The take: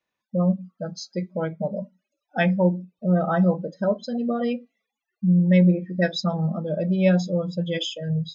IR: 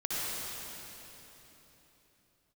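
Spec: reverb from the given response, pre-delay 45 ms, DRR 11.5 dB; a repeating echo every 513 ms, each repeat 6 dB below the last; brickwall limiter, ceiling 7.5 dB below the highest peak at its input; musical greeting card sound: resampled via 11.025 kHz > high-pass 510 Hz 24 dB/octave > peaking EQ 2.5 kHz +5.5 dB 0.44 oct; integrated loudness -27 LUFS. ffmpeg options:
-filter_complex "[0:a]alimiter=limit=0.188:level=0:latency=1,aecho=1:1:513|1026|1539|2052|2565|3078:0.501|0.251|0.125|0.0626|0.0313|0.0157,asplit=2[s0][s1];[1:a]atrim=start_sample=2205,adelay=45[s2];[s1][s2]afir=irnorm=-1:irlink=0,volume=0.112[s3];[s0][s3]amix=inputs=2:normalize=0,aresample=11025,aresample=44100,highpass=f=510:w=0.5412,highpass=f=510:w=1.3066,equalizer=f=2500:t=o:w=0.44:g=5.5,volume=1.58"

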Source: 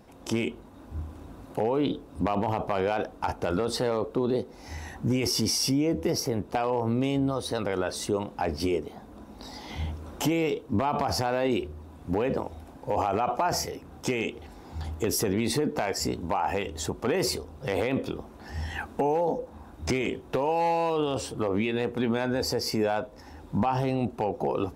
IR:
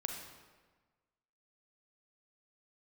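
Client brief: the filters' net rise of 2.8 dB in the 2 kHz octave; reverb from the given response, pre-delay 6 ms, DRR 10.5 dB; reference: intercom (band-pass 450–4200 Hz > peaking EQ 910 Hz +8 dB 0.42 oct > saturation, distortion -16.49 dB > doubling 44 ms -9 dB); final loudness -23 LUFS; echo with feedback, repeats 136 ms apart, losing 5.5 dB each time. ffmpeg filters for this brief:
-filter_complex "[0:a]equalizer=f=2000:t=o:g=3.5,aecho=1:1:136|272|408|544|680|816|952:0.531|0.281|0.149|0.079|0.0419|0.0222|0.0118,asplit=2[s0][s1];[1:a]atrim=start_sample=2205,adelay=6[s2];[s1][s2]afir=irnorm=-1:irlink=0,volume=0.282[s3];[s0][s3]amix=inputs=2:normalize=0,highpass=450,lowpass=4200,equalizer=f=910:t=o:w=0.42:g=8,asoftclip=threshold=0.15,asplit=2[s4][s5];[s5]adelay=44,volume=0.355[s6];[s4][s6]amix=inputs=2:normalize=0,volume=1.78"

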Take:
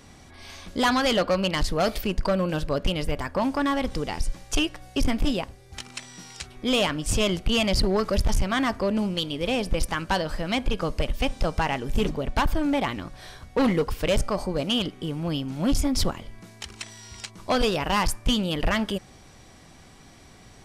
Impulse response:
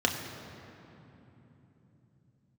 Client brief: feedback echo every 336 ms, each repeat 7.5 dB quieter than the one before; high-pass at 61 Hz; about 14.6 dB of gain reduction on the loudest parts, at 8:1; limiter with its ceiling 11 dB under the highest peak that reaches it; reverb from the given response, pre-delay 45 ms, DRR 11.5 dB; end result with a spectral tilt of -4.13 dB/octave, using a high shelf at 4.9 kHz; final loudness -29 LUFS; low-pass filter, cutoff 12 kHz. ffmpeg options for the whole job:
-filter_complex "[0:a]highpass=61,lowpass=12000,highshelf=f=4900:g=6,acompressor=threshold=0.02:ratio=8,alimiter=level_in=2:limit=0.0631:level=0:latency=1,volume=0.501,aecho=1:1:336|672|1008|1344|1680:0.422|0.177|0.0744|0.0312|0.0131,asplit=2[s0][s1];[1:a]atrim=start_sample=2205,adelay=45[s2];[s1][s2]afir=irnorm=-1:irlink=0,volume=0.075[s3];[s0][s3]amix=inputs=2:normalize=0,volume=3.16"

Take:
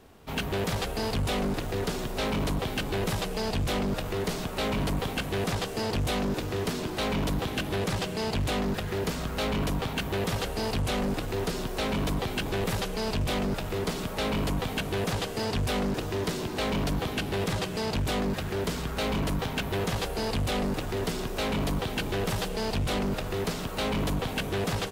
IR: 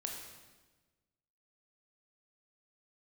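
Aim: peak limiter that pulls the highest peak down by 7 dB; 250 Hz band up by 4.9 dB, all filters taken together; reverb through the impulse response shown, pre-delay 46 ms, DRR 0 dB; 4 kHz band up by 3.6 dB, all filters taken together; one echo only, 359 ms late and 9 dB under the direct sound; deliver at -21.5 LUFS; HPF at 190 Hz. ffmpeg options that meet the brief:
-filter_complex "[0:a]highpass=190,equalizer=f=250:t=o:g=8.5,equalizer=f=4000:t=o:g=4.5,alimiter=limit=0.1:level=0:latency=1,aecho=1:1:359:0.355,asplit=2[s0][s1];[1:a]atrim=start_sample=2205,adelay=46[s2];[s1][s2]afir=irnorm=-1:irlink=0,volume=1.06[s3];[s0][s3]amix=inputs=2:normalize=0,volume=1.58"

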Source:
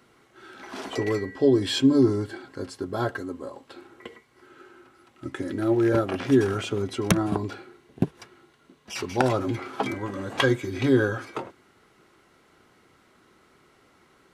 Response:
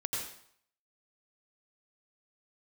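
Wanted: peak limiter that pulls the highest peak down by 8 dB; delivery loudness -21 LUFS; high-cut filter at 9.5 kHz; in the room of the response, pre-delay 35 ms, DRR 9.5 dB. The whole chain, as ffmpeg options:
-filter_complex "[0:a]lowpass=9500,alimiter=limit=0.178:level=0:latency=1,asplit=2[s0][s1];[1:a]atrim=start_sample=2205,adelay=35[s2];[s1][s2]afir=irnorm=-1:irlink=0,volume=0.224[s3];[s0][s3]amix=inputs=2:normalize=0,volume=2"

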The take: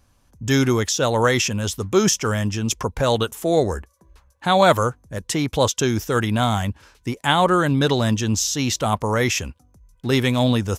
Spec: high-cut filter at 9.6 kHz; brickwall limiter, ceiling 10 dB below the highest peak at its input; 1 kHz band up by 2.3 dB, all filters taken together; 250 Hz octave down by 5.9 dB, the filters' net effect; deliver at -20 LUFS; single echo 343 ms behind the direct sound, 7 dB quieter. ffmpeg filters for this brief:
-af "lowpass=9600,equalizer=f=250:t=o:g=-8,equalizer=f=1000:t=o:g=3.5,alimiter=limit=0.282:level=0:latency=1,aecho=1:1:343:0.447,volume=1.33"

